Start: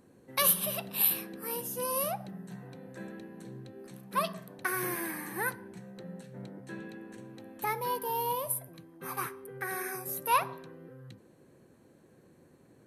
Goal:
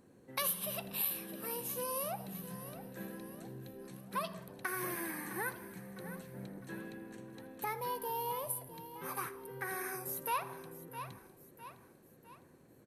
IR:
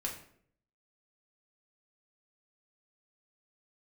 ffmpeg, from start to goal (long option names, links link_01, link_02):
-filter_complex "[0:a]asplit=2[link_01][link_02];[link_02]aecho=0:1:657|1314|1971|2628:0.158|0.0729|0.0335|0.0154[link_03];[link_01][link_03]amix=inputs=2:normalize=0,acompressor=threshold=-34dB:ratio=2,asplit=2[link_04][link_05];[link_05]asplit=5[link_06][link_07][link_08][link_09][link_10];[link_06]adelay=81,afreqshift=-44,volume=-21dB[link_11];[link_07]adelay=162,afreqshift=-88,volume=-25.3dB[link_12];[link_08]adelay=243,afreqshift=-132,volume=-29.6dB[link_13];[link_09]adelay=324,afreqshift=-176,volume=-33.9dB[link_14];[link_10]adelay=405,afreqshift=-220,volume=-38.2dB[link_15];[link_11][link_12][link_13][link_14][link_15]amix=inputs=5:normalize=0[link_16];[link_04][link_16]amix=inputs=2:normalize=0,volume=-2.5dB"